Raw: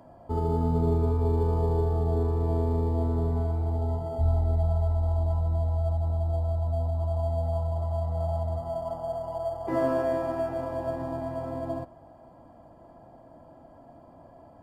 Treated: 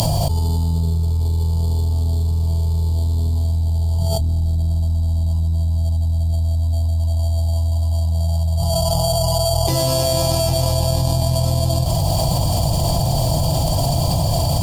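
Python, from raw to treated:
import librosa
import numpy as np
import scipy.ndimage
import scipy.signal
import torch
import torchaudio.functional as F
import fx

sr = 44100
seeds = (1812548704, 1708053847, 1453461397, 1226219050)

y = fx.curve_eq(x, sr, hz=(150.0, 250.0, 870.0, 1600.0, 2900.0, 4400.0), db=(0, -21, -13, -26, 3, 14))
y = fx.tube_stage(y, sr, drive_db=22.0, bias=0.4)
y = fx.env_flatten(y, sr, amount_pct=100)
y = y * librosa.db_to_amplitude(7.5)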